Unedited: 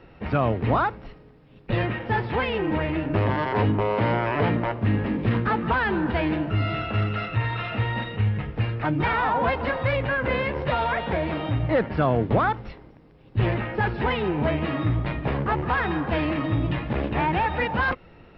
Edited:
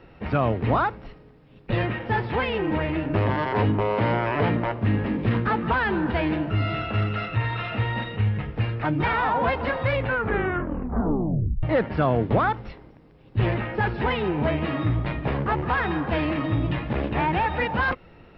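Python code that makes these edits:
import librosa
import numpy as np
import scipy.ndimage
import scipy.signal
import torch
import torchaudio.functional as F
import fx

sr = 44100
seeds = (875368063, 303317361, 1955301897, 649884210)

y = fx.edit(x, sr, fx.tape_stop(start_s=10.01, length_s=1.62), tone=tone)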